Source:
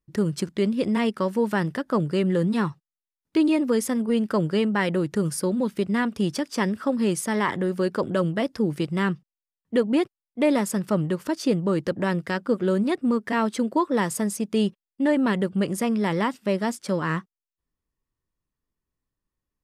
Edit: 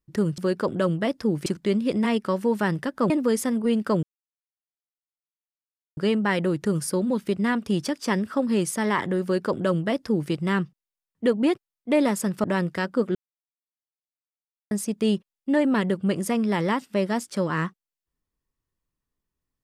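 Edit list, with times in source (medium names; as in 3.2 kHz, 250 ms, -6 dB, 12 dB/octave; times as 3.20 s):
2.02–3.54 s: delete
4.47 s: insert silence 1.94 s
7.73–8.81 s: copy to 0.38 s
10.94–11.96 s: delete
12.67–14.23 s: mute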